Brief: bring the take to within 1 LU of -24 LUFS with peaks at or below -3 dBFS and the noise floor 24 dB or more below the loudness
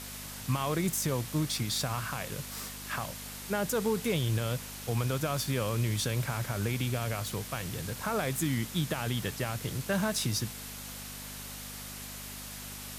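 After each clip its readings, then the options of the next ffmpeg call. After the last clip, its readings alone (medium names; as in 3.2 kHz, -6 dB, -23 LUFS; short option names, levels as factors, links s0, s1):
hum 50 Hz; highest harmonic 250 Hz; hum level -45 dBFS; noise floor -43 dBFS; noise floor target -57 dBFS; loudness -33.0 LUFS; peak level -18.5 dBFS; loudness target -24.0 LUFS
-> -af "bandreject=f=50:t=h:w=4,bandreject=f=100:t=h:w=4,bandreject=f=150:t=h:w=4,bandreject=f=200:t=h:w=4,bandreject=f=250:t=h:w=4"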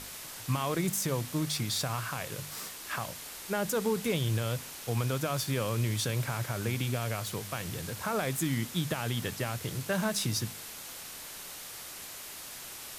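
hum not found; noise floor -44 dBFS; noise floor target -57 dBFS
-> -af "afftdn=nr=13:nf=-44"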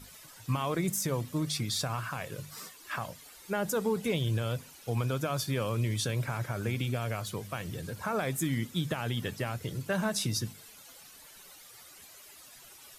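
noise floor -53 dBFS; noise floor target -57 dBFS
-> -af "afftdn=nr=6:nf=-53"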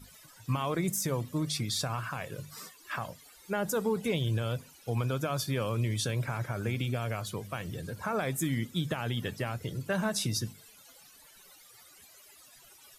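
noise floor -57 dBFS; loudness -33.0 LUFS; peak level -19.5 dBFS; loudness target -24.0 LUFS
-> -af "volume=2.82"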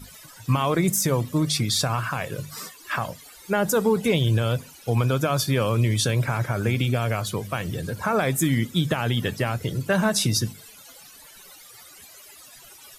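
loudness -24.0 LUFS; peak level -10.5 dBFS; noise floor -48 dBFS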